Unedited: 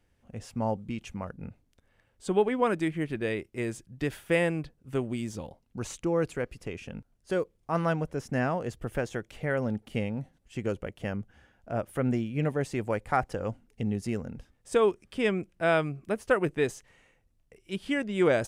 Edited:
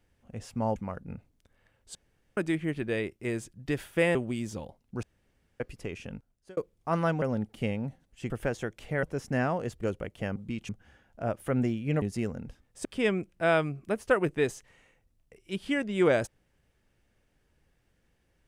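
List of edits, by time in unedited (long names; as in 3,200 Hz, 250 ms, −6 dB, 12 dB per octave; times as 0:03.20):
0:00.76–0:01.09: move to 0:11.18
0:02.28–0:02.70: fill with room tone
0:04.48–0:04.97: remove
0:05.85–0:06.42: fill with room tone
0:06.94–0:07.39: fade out
0:08.04–0:08.82: swap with 0:09.55–0:10.63
0:12.51–0:13.92: remove
0:14.75–0:15.05: remove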